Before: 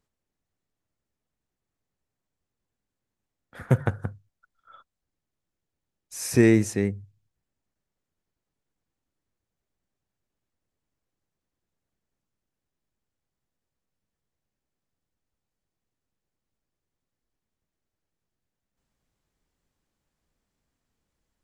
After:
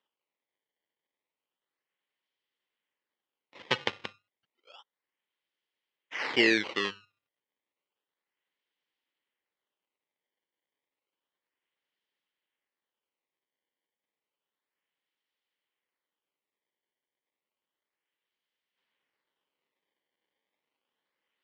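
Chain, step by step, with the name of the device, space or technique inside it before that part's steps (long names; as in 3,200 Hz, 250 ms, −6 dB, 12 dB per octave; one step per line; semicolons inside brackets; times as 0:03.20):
circuit-bent sampling toy (sample-and-hold swept by an LFO 19×, swing 160% 0.31 Hz; loudspeaker in its box 520–5,000 Hz, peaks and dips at 690 Hz −8 dB, 1,300 Hz −4 dB, 2,000 Hz +6 dB, 3,100 Hz +9 dB)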